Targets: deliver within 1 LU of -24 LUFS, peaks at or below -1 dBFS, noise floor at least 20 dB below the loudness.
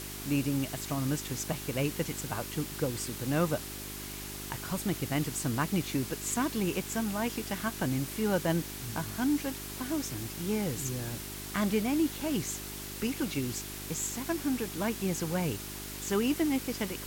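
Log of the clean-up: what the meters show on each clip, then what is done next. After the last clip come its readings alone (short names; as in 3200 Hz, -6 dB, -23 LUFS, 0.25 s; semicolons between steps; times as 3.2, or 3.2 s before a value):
hum 50 Hz; harmonics up to 400 Hz; hum level -44 dBFS; noise floor -41 dBFS; noise floor target -53 dBFS; loudness -32.5 LUFS; peak -14.0 dBFS; loudness target -24.0 LUFS
-> de-hum 50 Hz, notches 8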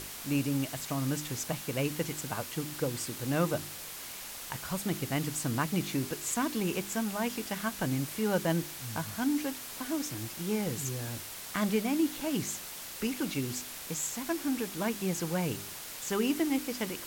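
hum none; noise floor -43 dBFS; noise floor target -53 dBFS
-> denoiser 10 dB, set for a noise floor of -43 dBFS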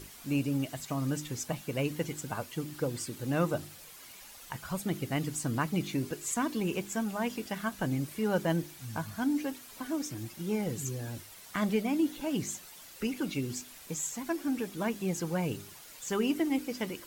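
noise floor -51 dBFS; noise floor target -54 dBFS
-> denoiser 6 dB, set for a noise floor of -51 dBFS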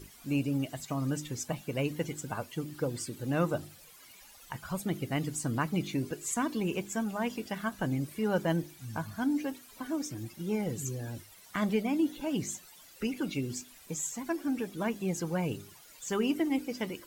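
noise floor -55 dBFS; loudness -33.5 LUFS; peak -15.5 dBFS; loudness target -24.0 LUFS
-> gain +9.5 dB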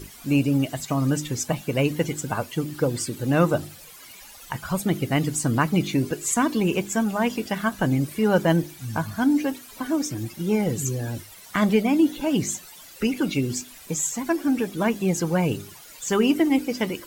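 loudness -24.0 LUFS; peak -6.0 dBFS; noise floor -45 dBFS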